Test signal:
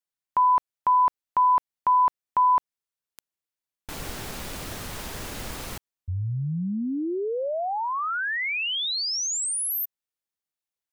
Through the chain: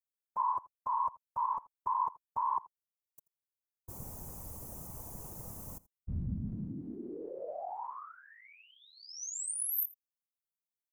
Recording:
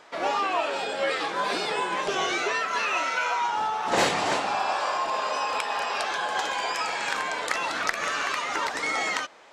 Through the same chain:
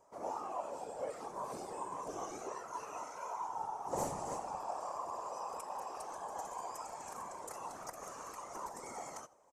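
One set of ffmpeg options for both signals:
ffmpeg -i in.wav -filter_complex "[0:a]firequalizer=gain_entry='entry(120,0);entry(240,-7);entry(670,-5);entry(1000,-5);entry(1500,-21);entry(3700,-27);entry(6100,-5);entry(13000,4)':delay=0.05:min_phase=1,afftfilt=real='hypot(re,im)*cos(2*PI*random(0))':imag='hypot(re,im)*sin(2*PI*random(1))':win_size=512:overlap=0.75,asplit=2[link_01][link_02];[link_02]aecho=0:1:83:0.0841[link_03];[link_01][link_03]amix=inputs=2:normalize=0,volume=-2dB" out.wav

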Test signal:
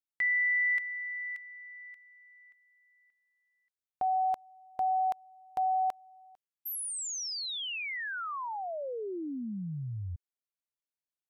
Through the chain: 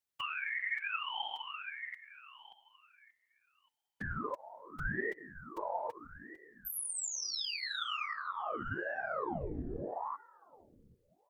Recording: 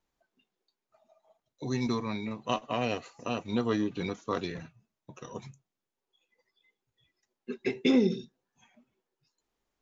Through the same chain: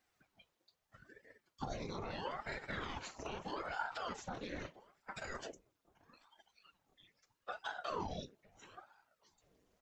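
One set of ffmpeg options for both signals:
ffmpeg -i in.wav -filter_complex "[0:a]highpass=53,lowshelf=frequency=110:gain=-9.5,alimiter=limit=-23dB:level=0:latency=1:release=257,acompressor=threshold=-41dB:ratio=6:attack=0.32:release=70:knee=1:detection=rms,asplit=2[link_01][link_02];[link_02]adelay=786,lowpass=frequency=2000:poles=1,volume=-23.5dB,asplit=2[link_03][link_04];[link_04]adelay=786,lowpass=frequency=2000:poles=1,volume=0.31[link_05];[link_01][link_03][link_05]amix=inputs=3:normalize=0,afftfilt=real='hypot(re,im)*cos(2*PI*random(0))':imag='hypot(re,im)*sin(2*PI*random(1))':win_size=512:overlap=0.75,flanger=delay=2.4:depth=3.4:regen=31:speed=1.1:shape=sinusoidal,aeval=exprs='val(0)*sin(2*PI*630*n/s+630*0.85/0.78*sin(2*PI*0.78*n/s))':channel_layout=same,volume=17dB" out.wav

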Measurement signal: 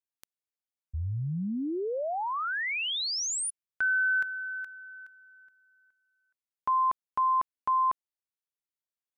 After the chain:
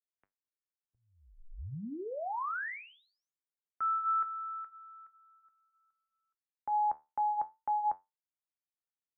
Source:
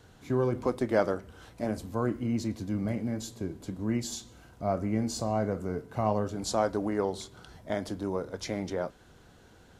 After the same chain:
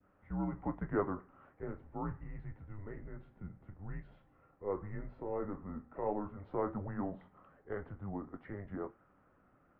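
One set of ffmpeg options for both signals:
ffmpeg -i in.wav -af "highpass=frequency=250:width_type=q:width=0.5412,highpass=frequency=250:width_type=q:width=1.307,lowpass=frequency=2200:width_type=q:width=0.5176,lowpass=frequency=2200:width_type=q:width=0.7071,lowpass=frequency=2200:width_type=q:width=1.932,afreqshift=-200,flanger=delay=10:depth=3.6:regen=-69:speed=0.23:shape=sinusoidal,adynamicequalizer=threshold=0.00794:dfrequency=1100:dqfactor=0.75:tfrequency=1100:tqfactor=0.75:attack=5:release=100:ratio=0.375:range=2.5:mode=boostabove:tftype=bell,volume=-4.5dB" out.wav

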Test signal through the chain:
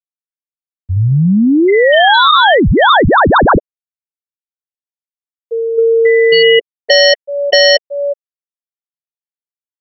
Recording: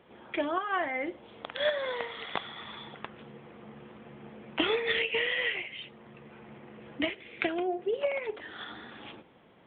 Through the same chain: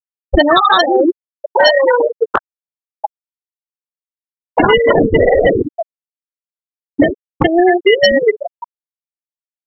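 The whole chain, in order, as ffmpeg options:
ffmpeg -i in.wav -filter_complex "[0:a]highpass=190,asplit=2[link_01][link_02];[link_02]adelay=370,highpass=300,lowpass=3400,asoftclip=type=hard:threshold=-21.5dB,volume=-19dB[link_03];[link_01][link_03]amix=inputs=2:normalize=0,acrusher=samples=18:mix=1:aa=0.000001,afftfilt=real='re*gte(hypot(re,im),0.0708)':imag='im*gte(hypot(re,im),0.0708)':win_size=1024:overlap=0.75,acompressor=threshold=-41dB:ratio=6,crystalizer=i=7:c=0,apsyclip=34dB,volume=-2dB" out.wav

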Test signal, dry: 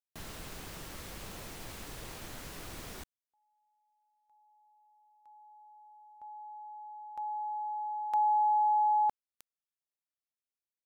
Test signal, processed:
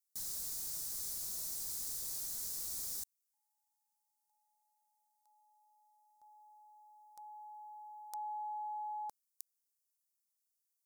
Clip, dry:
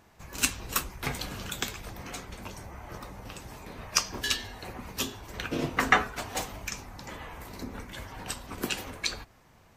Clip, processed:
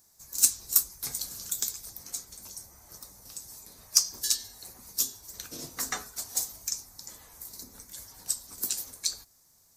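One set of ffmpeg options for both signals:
ffmpeg -i in.wav -af "aexciter=amount=10.4:drive=7.5:freq=4300,volume=-15dB" out.wav

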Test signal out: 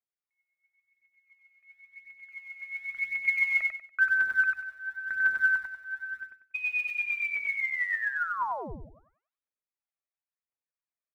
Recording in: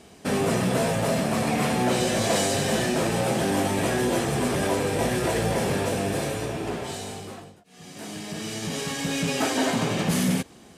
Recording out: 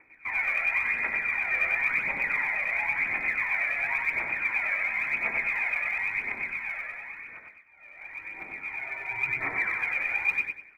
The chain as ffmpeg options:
ffmpeg -i in.wav -af "lowpass=frequency=2200:width_type=q:width=0.5098,lowpass=frequency=2200:width_type=q:width=0.6013,lowpass=frequency=2200:width_type=q:width=0.9,lowpass=frequency=2200:width_type=q:width=2.563,afreqshift=-2600,aphaser=in_gain=1:out_gain=1:delay=1.8:decay=0.67:speed=0.95:type=triangular,aecho=1:1:95|190|285|380:0.668|0.187|0.0524|0.0147,volume=-8.5dB" out.wav

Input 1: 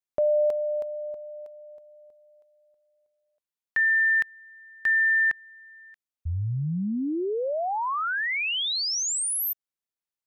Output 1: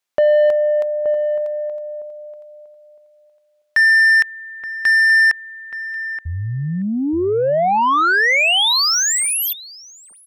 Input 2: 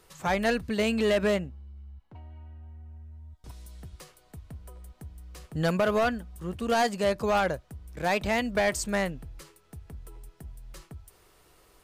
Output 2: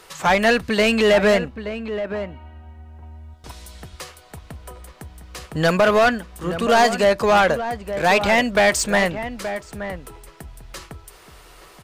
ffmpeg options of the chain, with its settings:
ffmpeg -i in.wav -filter_complex "[0:a]asplit=2[link_01][link_02];[link_02]highpass=frequency=720:poles=1,volume=12dB,asoftclip=type=tanh:threshold=-17dB[link_03];[link_01][link_03]amix=inputs=2:normalize=0,lowpass=frequency=5600:poles=1,volume=-6dB,asplit=2[link_04][link_05];[link_05]adelay=874.6,volume=-10dB,highshelf=frequency=4000:gain=-19.7[link_06];[link_04][link_06]amix=inputs=2:normalize=0,volume=8.5dB" out.wav

